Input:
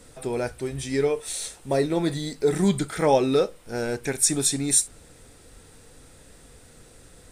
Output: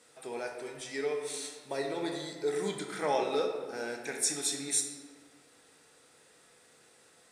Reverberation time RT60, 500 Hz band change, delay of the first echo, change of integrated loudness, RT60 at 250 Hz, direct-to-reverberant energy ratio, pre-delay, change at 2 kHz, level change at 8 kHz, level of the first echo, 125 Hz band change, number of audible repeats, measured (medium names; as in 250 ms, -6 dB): 1.6 s, -9.0 dB, no echo, -9.5 dB, 1.9 s, 2.0 dB, 3 ms, -5.0 dB, -9.0 dB, no echo, -20.0 dB, no echo